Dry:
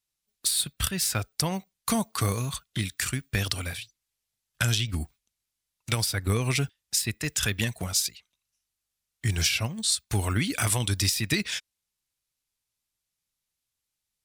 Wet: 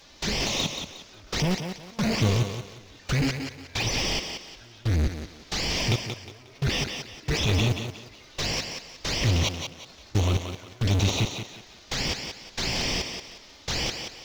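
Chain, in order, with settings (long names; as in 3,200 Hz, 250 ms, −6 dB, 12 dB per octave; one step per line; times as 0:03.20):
linear delta modulator 32 kbit/s, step −18.5 dBFS
gate pattern ".xx...x." 68 BPM −24 dB
flanger swept by the level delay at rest 3.9 ms, full sweep at −22.5 dBFS
in parallel at −6.5 dB: decimation without filtering 27×
on the sum: feedback echo with a high-pass in the loop 180 ms, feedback 33%, high-pass 180 Hz, level −6.5 dB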